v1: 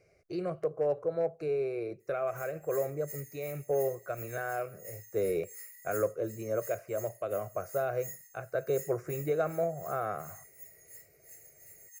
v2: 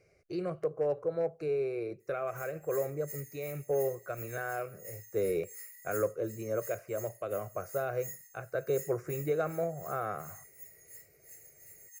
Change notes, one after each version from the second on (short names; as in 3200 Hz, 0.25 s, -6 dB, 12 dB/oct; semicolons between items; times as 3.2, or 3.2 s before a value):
master: add bell 660 Hz -4 dB 0.35 oct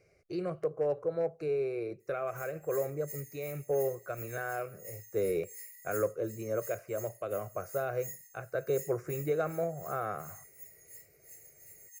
background: add Butterworth band-stop 1300 Hz, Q 1.5